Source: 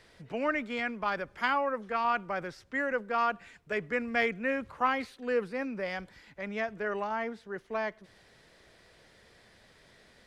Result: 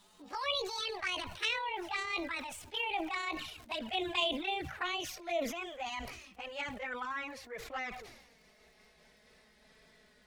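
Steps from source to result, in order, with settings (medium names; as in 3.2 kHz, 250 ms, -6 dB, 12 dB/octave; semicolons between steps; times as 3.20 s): pitch bend over the whole clip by +11.5 st ending unshifted; dynamic bell 260 Hz, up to -8 dB, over -51 dBFS, Q 0.76; touch-sensitive flanger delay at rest 5.2 ms, full sweep at -29 dBFS; crackle 170 per s -63 dBFS; decay stretcher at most 56 dB/s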